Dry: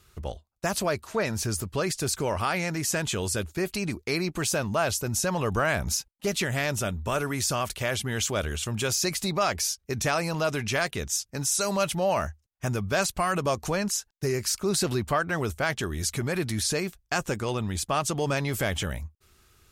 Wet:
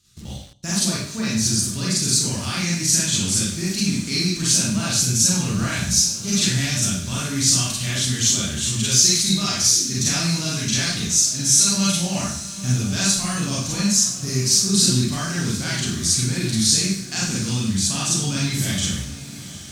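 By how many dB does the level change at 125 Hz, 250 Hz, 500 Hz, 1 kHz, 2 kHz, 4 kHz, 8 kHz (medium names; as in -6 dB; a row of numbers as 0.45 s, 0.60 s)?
+8.0 dB, +8.5 dB, -6.0 dB, -4.5 dB, +1.0 dB, +12.0 dB, +13.0 dB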